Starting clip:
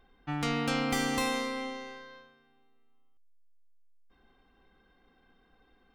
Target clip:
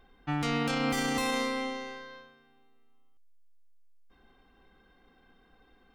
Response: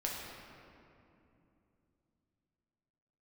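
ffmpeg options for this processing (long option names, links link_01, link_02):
-af "alimiter=limit=-23.5dB:level=0:latency=1:release=32,volume=3dB"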